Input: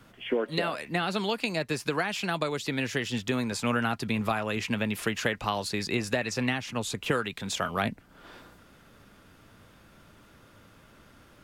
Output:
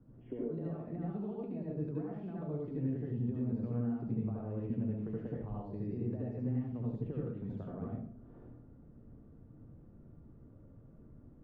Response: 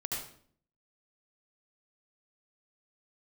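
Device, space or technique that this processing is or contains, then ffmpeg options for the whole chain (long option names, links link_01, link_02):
television next door: -filter_complex "[0:a]acompressor=threshold=-32dB:ratio=4,lowpass=350[link_01];[1:a]atrim=start_sample=2205[link_02];[link_01][link_02]afir=irnorm=-1:irlink=0,volume=-1.5dB"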